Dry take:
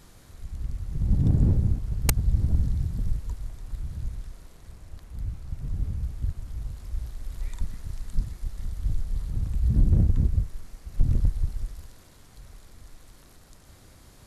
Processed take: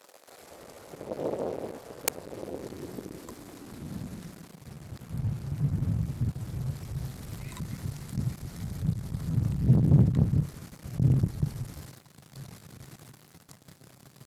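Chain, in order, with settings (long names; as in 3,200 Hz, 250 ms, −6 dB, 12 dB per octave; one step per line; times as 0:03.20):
leveller curve on the samples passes 3
high-pass filter sweep 490 Hz → 130 Hz, 0:02.33–0:04.84
pitch shifter +1 semitone
level −6 dB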